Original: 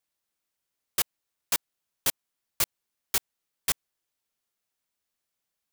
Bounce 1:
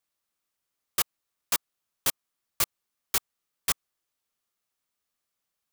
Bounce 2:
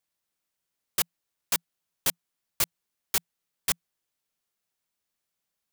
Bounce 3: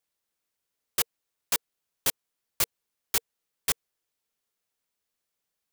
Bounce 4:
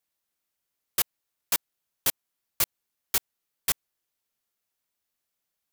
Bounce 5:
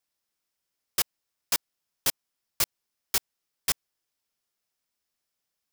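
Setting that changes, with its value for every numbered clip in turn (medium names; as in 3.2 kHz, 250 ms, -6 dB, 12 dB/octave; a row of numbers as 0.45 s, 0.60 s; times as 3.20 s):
peaking EQ, frequency: 1.2 kHz, 170 Hz, 460 Hz, 13 kHz, 5.2 kHz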